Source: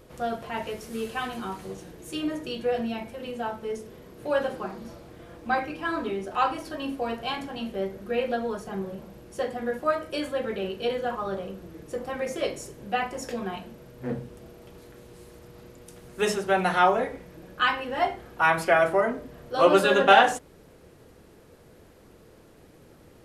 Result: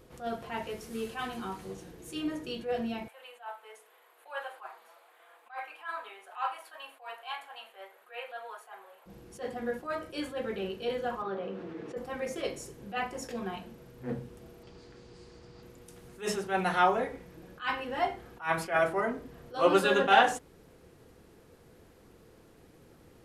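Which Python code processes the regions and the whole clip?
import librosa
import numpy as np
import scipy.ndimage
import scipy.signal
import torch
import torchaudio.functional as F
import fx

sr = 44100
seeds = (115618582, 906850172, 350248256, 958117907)

y = fx.chain(x, sr, fx.highpass(hz=720.0, slope=24),
    fx.peak_eq(hz=5500.0, db=-14.0, octaves=0.71), at=(3.08, 9.06))
y = fx.chain(y, sr, fx.bandpass_edges(low_hz=230.0, high_hz=2900.0),
    fx.env_flatten(amount_pct=50), at=(11.22, 11.97))
y = fx.chain(y, sr, fx.lowpass(hz=7300.0, slope=24),
    fx.peak_eq(hz=4700.0, db=10.0, octaves=0.23), at=(14.63, 15.63))
y = fx.notch(y, sr, hz=600.0, q=12.0)
y = fx.attack_slew(y, sr, db_per_s=200.0)
y = y * 10.0 ** (-4.0 / 20.0)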